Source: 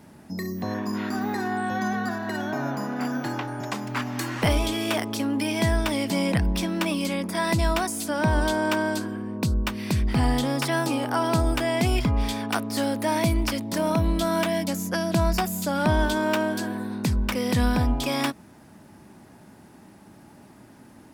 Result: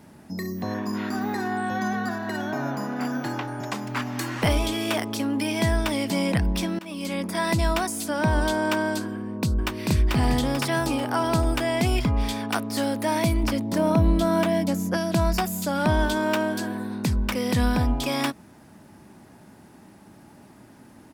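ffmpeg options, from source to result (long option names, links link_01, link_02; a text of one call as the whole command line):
ffmpeg -i in.wav -filter_complex "[0:a]asplit=2[link_01][link_02];[link_02]afade=type=in:start_time=9.14:duration=0.01,afade=type=out:start_time=9.89:duration=0.01,aecho=0:1:440|880|1320|1760|2200|2640:0.841395|0.378628|0.170383|0.0766721|0.0345025|0.0155261[link_03];[link_01][link_03]amix=inputs=2:normalize=0,asettb=1/sr,asplit=3[link_04][link_05][link_06];[link_04]atrim=end=13.434[link_07];[link_05]atrim=start=13.43:end=14.97,asetpts=PTS-STARTPTS,afade=type=in:duration=0.004:curve=qsin,afade=type=out:start_time=1.536:duration=0.004:curve=qsin,tiltshelf=frequency=1200:gain=4[link_08];[link_06]atrim=start=14.966[link_09];[link_07][link_08]acrossfade=duration=0.004:curve1=hsin:curve2=qsin[link_10];[link_10][link_09]acrossfade=duration=0.004:curve1=qsin:curve2=hsin,asplit=2[link_11][link_12];[link_11]atrim=end=6.79,asetpts=PTS-STARTPTS,afade=type=out:start_time=6.786:duration=0.004:curve=hsin:silence=0.0707946[link_13];[link_12]atrim=start=6.79,asetpts=PTS-STARTPTS,afade=type=in:duration=0.41:silence=0.0707946[link_14];[link_13][link_14]concat=n=2:v=0:a=1" out.wav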